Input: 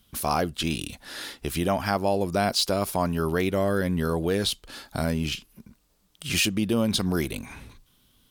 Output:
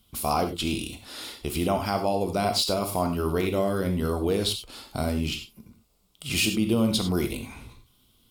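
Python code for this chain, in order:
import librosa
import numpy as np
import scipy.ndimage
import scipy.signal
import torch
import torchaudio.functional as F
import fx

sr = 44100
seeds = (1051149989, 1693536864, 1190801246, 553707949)

y = fx.peak_eq(x, sr, hz=1700.0, db=-13.0, octaves=0.28)
y = fx.notch(y, sr, hz=6100.0, q=14.0)
y = fx.rev_gated(y, sr, seeds[0], gate_ms=120, shape='flat', drr_db=5.0)
y = y * 10.0 ** (-1.0 / 20.0)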